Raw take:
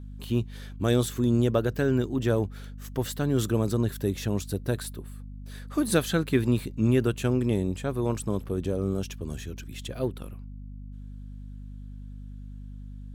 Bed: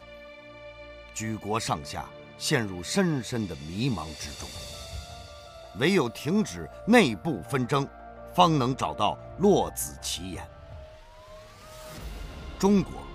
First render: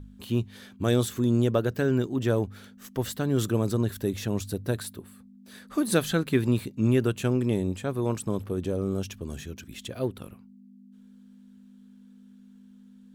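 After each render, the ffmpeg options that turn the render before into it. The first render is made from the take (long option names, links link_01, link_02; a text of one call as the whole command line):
ffmpeg -i in.wav -af "bandreject=frequency=50:width_type=h:width=4,bandreject=frequency=100:width_type=h:width=4,bandreject=frequency=150:width_type=h:width=4" out.wav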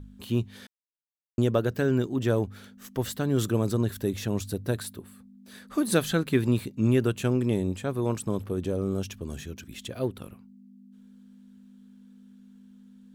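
ffmpeg -i in.wav -filter_complex "[0:a]asplit=3[link_01][link_02][link_03];[link_01]atrim=end=0.67,asetpts=PTS-STARTPTS,afade=type=out:start_time=0.666:duration=0.004:curve=hsin[link_04];[link_02]atrim=start=0.67:end=1.38,asetpts=PTS-STARTPTS,volume=0[link_05];[link_03]atrim=start=1.38,asetpts=PTS-STARTPTS,afade=type=in:duration=0.004:curve=hsin[link_06];[link_04][link_05][link_06]concat=n=3:v=0:a=1" out.wav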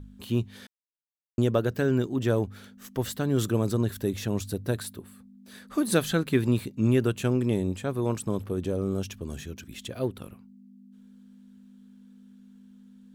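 ffmpeg -i in.wav -af anull out.wav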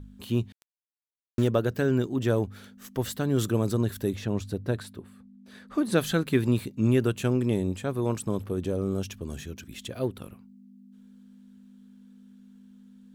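ffmpeg -i in.wav -filter_complex "[0:a]asettb=1/sr,asplit=3[link_01][link_02][link_03];[link_01]atrim=end=0.524[link_04];[link_02]atrim=start=0.52:end=1.48,asetpts=PTS-STARTPTS,afade=type=in:duration=0.004:curve=qsin,afade=type=out:start_time=0.956:duration=0.004:curve=qsin,aeval=exprs='val(0)*gte(abs(val(0)),0.0188)':channel_layout=same[link_05];[link_03]atrim=start=1.476[link_06];[link_04][link_05]acrossfade=duration=0.004:curve1=hsin:curve2=qsin[link_07];[link_07][link_06]acrossfade=duration=0.004:curve1=qsin:curve2=hsin,asplit=3[link_08][link_09][link_10];[link_08]afade=type=out:start_time=4.14:duration=0.02[link_11];[link_09]aemphasis=mode=reproduction:type=50kf,afade=type=in:start_time=4.14:duration=0.02,afade=type=out:start_time=5.97:duration=0.02[link_12];[link_10]afade=type=in:start_time=5.97:duration=0.02[link_13];[link_11][link_12][link_13]amix=inputs=3:normalize=0" out.wav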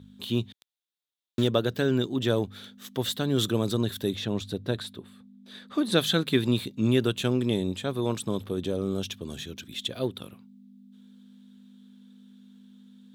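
ffmpeg -i in.wav -af "highpass=110,equalizer=frequency=3600:width_type=o:width=0.46:gain=13" out.wav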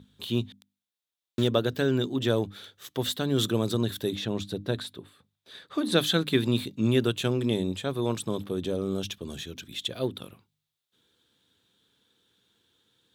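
ffmpeg -i in.wav -af "bandreject=frequency=50:width_type=h:width=6,bandreject=frequency=100:width_type=h:width=6,bandreject=frequency=150:width_type=h:width=6,bandreject=frequency=200:width_type=h:width=6,bandreject=frequency=250:width_type=h:width=6,bandreject=frequency=300:width_type=h:width=6" out.wav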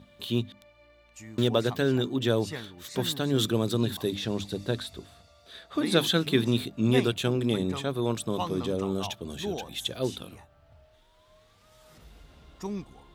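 ffmpeg -i in.wav -i bed.wav -filter_complex "[1:a]volume=-13dB[link_01];[0:a][link_01]amix=inputs=2:normalize=0" out.wav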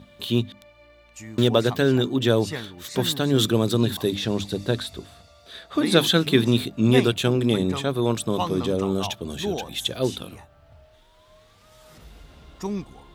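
ffmpeg -i in.wav -af "volume=5.5dB" out.wav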